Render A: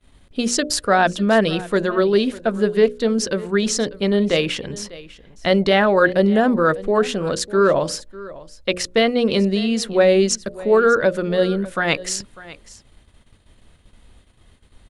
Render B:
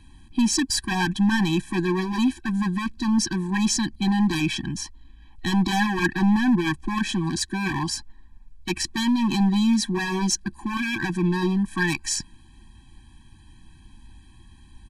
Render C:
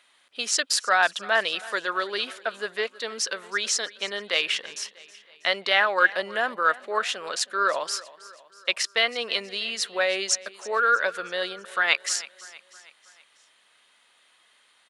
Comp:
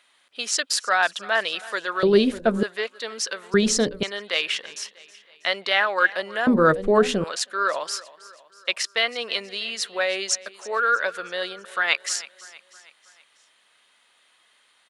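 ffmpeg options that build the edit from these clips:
-filter_complex "[0:a]asplit=3[a][b][c];[2:a]asplit=4[d][e][f][g];[d]atrim=end=2.032[h];[a]atrim=start=2.028:end=2.632[i];[e]atrim=start=2.628:end=3.542[j];[b]atrim=start=3.538:end=4.032[k];[f]atrim=start=4.028:end=6.472[l];[c]atrim=start=6.468:end=7.242[m];[g]atrim=start=7.238[n];[h][i]acrossfade=d=0.004:c1=hsin:c2=hsin[o];[o][j]acrossfade=d=0.004:c1=hsin:c2=hsin[p];[p][k]acrossfade=d=0.004:c1=hsin:c2=hsin[q];[q][l]acrossfade=d=0.004:c1=hsin:c2=hsin[r];[r][m]acrossfade=d=0.004:c1=hsin:c2=hsin[s];[s][n]acrossfade=d=0.004:c1=hsin:c2=hsin"

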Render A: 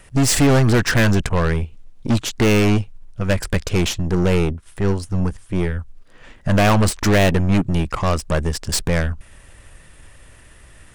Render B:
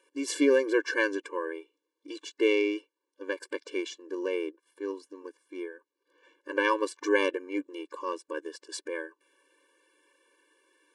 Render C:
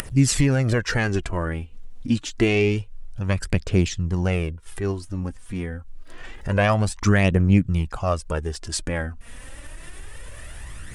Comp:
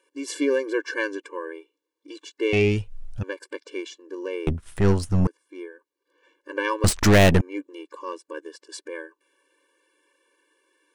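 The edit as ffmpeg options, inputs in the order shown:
-filter_complex "[0:a]asplit=2[a][b];[1:a]asplit=4[c][d][e][f];[c]atrim=end=2.532[g];[2:a]atrim=start=2.528:end=3.232[h];[d]atrim=start=3.228:end=4.472[i];[a]atrim=start=4.468:end=5.272[j];[e]atrim=start=5.268:end=6.842[k];[b]atrim=start=6.838:end=7.412[l];[f]atrim=start=7.408[m];[g][h]acrossfade=d=0.004:c1=hsin:c2=hsin[n];[n][i]acrossfade=d=0.004:c1=hsin:c2=hsin[o];[o][j]acrossfade=d=0.004:c1=hsin:c2=hsin[p];[p][k]acrossfade=d=0.004:c1=hsin:c2=hsin[q];[q][l]acrossfade=d=0.004:c1=hsin:c2=hsin[r];[r][m]acrossfade=d=0.004:c1=hsin:c2=hsin"

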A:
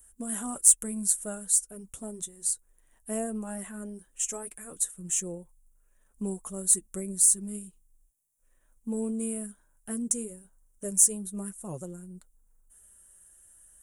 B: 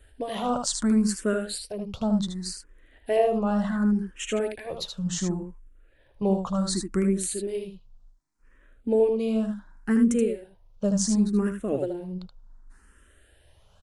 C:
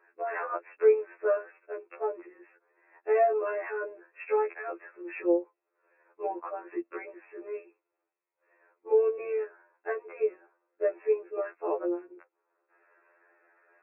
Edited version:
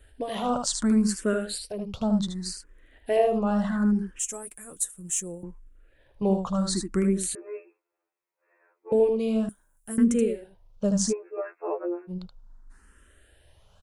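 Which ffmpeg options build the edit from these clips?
-filter_complex "[0:a]asplit=2[a][b];[2:a]asplit=2[c][d];[1:a]asplit=5[e][f][g][h][i];[e]atrim=end=4.192[j];[a]atrim=start=4.188:end=5.432[k];[f]atrim=start=5.428:end=7.352[l];[c]atrim=start=7.348:end=8.922[m];[g]atrim=start=8.918:end=9.492[n];[b]atrim=start=9.488:end=9.982[o];[h]atrim=start=9.978:end=11.13[p];[d]atrim=start=11.09:end=12.11[q];[i]atrim=start=12.07[r];[j][k]acrossfade=d=0.004:c1=hsin:c2=hsin[s];[s][l]acrossfade=d=0.004:c1=hsin:c2=hsin[t];[t][m]acrossfade=d=0.004:c1=hsin:c2=hsin[u];[u][n]acrossfade=d=0.004:c1=hsin:c2=hsin[v];[v][o]acrossfade=d=0.004:c1=hsin:c2=hsin[w];[w][p]acrossfade=d=0.004:c1=hsin:c2=hsin[x];[x][q]acrossfade=d=0.04:c1=tri:c2=tri[y];[y][r]acrossfade=d=0.04:c1=tri:c2=tri"

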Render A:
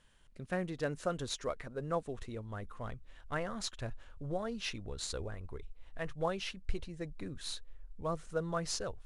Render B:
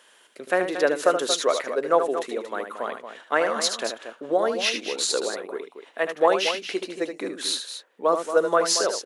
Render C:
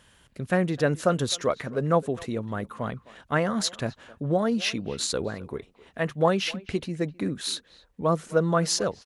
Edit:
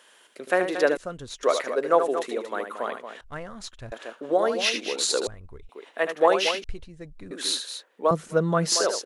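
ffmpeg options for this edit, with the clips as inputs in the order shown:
-filter_complex "[0:a]asplit=4[a][b][c][d];[1:a]asplit=6[e][f][g][h][i][j];[e]atrim=end=0.972[k];[a]atrim=start=0.968:end=1.432[l];[f]atrim=start=1.428:end=3.212[m];[b]atrim=start=3.208:end=3.922[n];[g]atrim=start=3.918:end=5.272[o];[c]atrim=start=5.268:end=5.692[p];[h]atrim=start=5.688:end=6.642[q];[d]atrim=start=6.638:end=7.312[r];[i]atrim=start=7.308:end=8.112[s];[2:a]atrim=start=8.108:end=8.722[t];[j]atrim=start=8.718[u];[k][l]acrossfade=d=0.004:c1=hsin:c2=hsin[v];[v][m]acrossfade=d=0.004:c1=hsin:c2=hsin[w];[w][n]acrossfade=d=0.004:c1=hsin:c2=hsin[x];[x][o]acrossfade=d=0.004:c1=hsin:c2=hsin[y];[y][p]acrossfade=d=0.004:c1=hsin:c2=hsin[z];[z][q]acrossfade=d=0.004:c1=hsin:c2=hsin[aa];[aa][r]acrossfade=d=0.004:c1=hsin:c2=hsin[ab];[ab][s]acrossfade=d=0.004:c1=hsin:c2=hsin[ac];[ac][t]acrossfade=d=0.004:c1=hsin:c2=hsin[ad];[ad][u]acrossfade=d=0.004:c1=hsin:c2=hsin"

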